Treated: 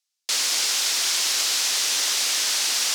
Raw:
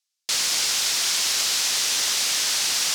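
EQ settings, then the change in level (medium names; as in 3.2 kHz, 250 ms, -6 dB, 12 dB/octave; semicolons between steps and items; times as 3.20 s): high-pass 240 Hz 24 dB/octave; 0.0 dB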